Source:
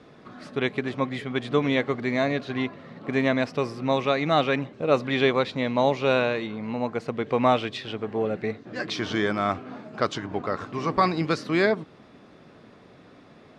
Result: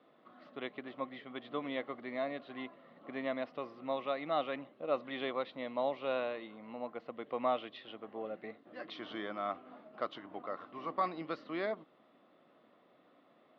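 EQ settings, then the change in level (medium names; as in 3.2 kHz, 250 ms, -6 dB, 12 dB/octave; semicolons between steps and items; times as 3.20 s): cabinet simulation 390–3100 Hz, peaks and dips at 420 Hz -9 dB, 890 Hz -6 dB, 1.6 kHz -10 dB, 2.4 kHz -9 dB; -8.0 dB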